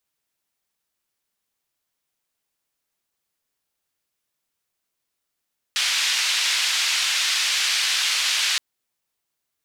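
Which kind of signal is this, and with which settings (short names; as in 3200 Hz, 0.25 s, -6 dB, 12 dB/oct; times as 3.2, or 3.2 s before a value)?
noise band 2200–4300 Hz, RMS -22 dBFS 2.82 s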